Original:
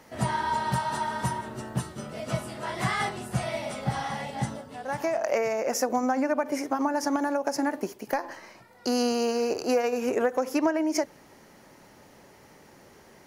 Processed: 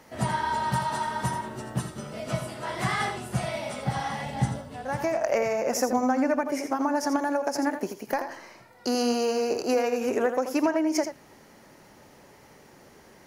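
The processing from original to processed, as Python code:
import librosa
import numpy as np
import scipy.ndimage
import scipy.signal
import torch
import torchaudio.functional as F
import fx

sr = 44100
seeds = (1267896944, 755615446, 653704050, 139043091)

y = fx.low_shelf(x, sr, hz=120.0, db=12.0, at=(4.25, 6.44))
y = y + 10.0 ** (-9.0 / 20.0) * np.pad(y, (int(83 * sr / 1000.0), 0))[:len(y)]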